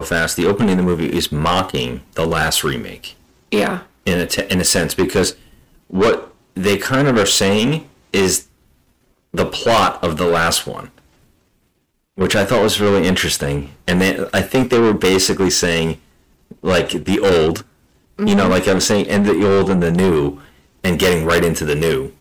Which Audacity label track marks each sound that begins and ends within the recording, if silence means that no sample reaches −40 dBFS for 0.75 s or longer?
9.340000	10.990000	sound